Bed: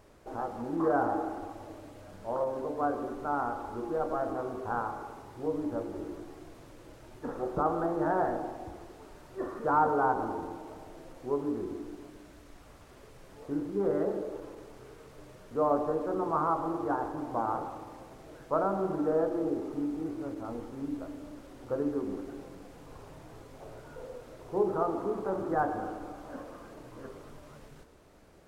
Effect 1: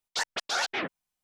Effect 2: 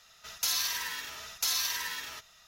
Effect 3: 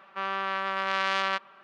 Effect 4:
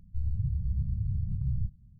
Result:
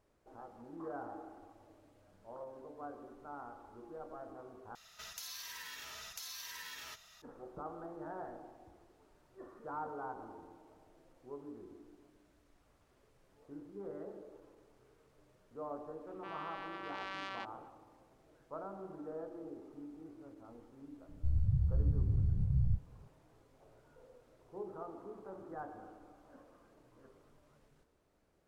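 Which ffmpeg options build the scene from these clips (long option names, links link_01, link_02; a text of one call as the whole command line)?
ffmpeg -i bed.wav -i cue0.wav -i cue1.wav -i cue2.wav -i cue3.wav -filter_complex "[0:a]volume=-16.5dB[link_01];[2:a]acompressor=threshold=-42dB:ratio=6:attack=3.2:release=140:knee=1:detection=peak[link_02];[link_01]asplit=2[link_03][link_04];[link_03]atrim=end=4.754[link_05];[link_02]atrim=end=2.47,asetpts=PTS-STARTPTS,volume=-2dB[link_06];[link_04]atrim=start=7.216[link_07];[3:a]atrim=end=1.63,asetpts=PTS-STARTPTS,volume=-16.5dB,afade=type=in:duration=0.004:curve=hsin,afade=type=out:start_time=1.626:duration=0.004:curve=hsin,adelay=16070[link_08];[4:a]atrim=end=1.99,asetpts=PTS-STARTPTS,volume=-1dB,afade=type=in:duration=0.004:curve=hsin,afade=type=out:start_time=1.986:duration=0.004:curve=hsin,adelay=21090[link_09];[link_05][link_06]acrossfade=duration=0.004:curve1=hsin:curve2=hsin[link_10];[link_10][link_07]acrossfade=duration=0.004:curve1=hsin:curve2=hsin[link_11];[link_11][link_08][link_09]amix=inputs=3:normalize=0" out.wav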